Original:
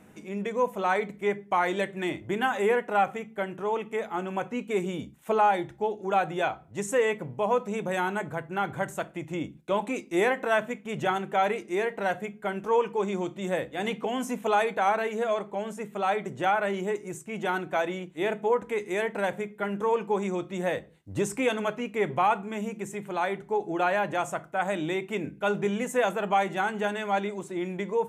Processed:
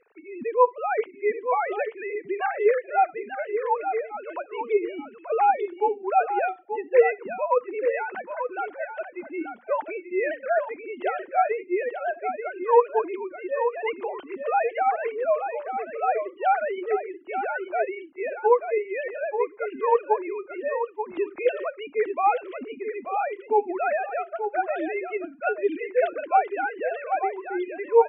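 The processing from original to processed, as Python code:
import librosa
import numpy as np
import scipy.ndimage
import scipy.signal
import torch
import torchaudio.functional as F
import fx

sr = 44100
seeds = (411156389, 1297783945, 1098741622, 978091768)

y = fx.sine_speech(x, sr)
y = y + 10.0 ** (-8.0 / 20.0) * np.pad(y, (int(884 * sr / 1000.0), 0))[:len(y)]
y = F.gain(torch.from_numpy(y), 2.0).numpy()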